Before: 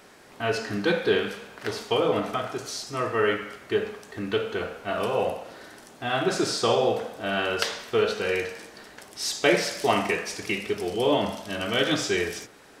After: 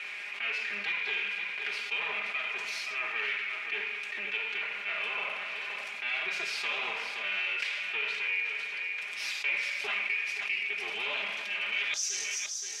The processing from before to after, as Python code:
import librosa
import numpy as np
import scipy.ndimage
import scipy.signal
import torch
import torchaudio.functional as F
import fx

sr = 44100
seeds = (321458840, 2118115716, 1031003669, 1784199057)

y = fx.lower_of_two(x, sr, delay_ms=4.9)
y = fx.bandpass_q(y, sr, hz=fx.steps((0.0, 2400.0), (11.94, 6100.0)), q=7.8)
y = y + 10.0 ** (-15.0 / 20.0) * np.pad(y, (int(522 * sr / 1000.0), 0))[:len(y)]
y = fx.env_flatten(y, sr, amount_pct=70)